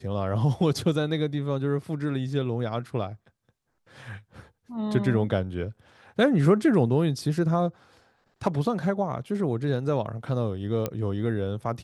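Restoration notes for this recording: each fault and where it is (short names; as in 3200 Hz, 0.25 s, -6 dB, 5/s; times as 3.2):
10.86 pop -13 dBFS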